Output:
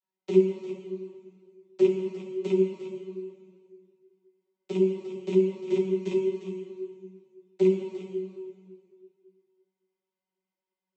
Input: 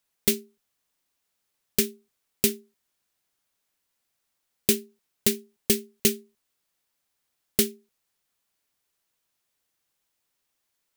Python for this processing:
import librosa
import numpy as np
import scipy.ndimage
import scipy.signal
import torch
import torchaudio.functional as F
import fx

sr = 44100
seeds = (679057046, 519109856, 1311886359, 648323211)

p1 = fx.rattle_buzz(x, sr, strikes_db=-35.0, level_db=-17.0)
p2 = fx.high_shelf(p1, sr, hz=4200.0, db=-11.0)
p3 = fx.leveller(p2, sr, passes=2)
p4 = fx.over_compress(p3, sr, threshold_db=-23.0, ratio=-1.0)
p5 = fx.env_flanger(p4, sr, rest_ms=9.8, full_db=-27.5)
p6 = fx.vocoder(p5, sr, bands=32, carrier='saw', carrier_hz=188.0)
p7 = fx.small_body(p6, sr, hz=(380.0, 970.0), ring_ms=60, db=12)
p8 = p7 + fx.echo_single(p7, sr, ms=353, db=-11.0, dry=0)
p9 = fx.rev_plate(p8, sr, seeds[0], rt60_s=2.1, hf_ratio=0.9, predelay_ms=0, drr_db=2.5)
y = fx.ensemble(p9, sr)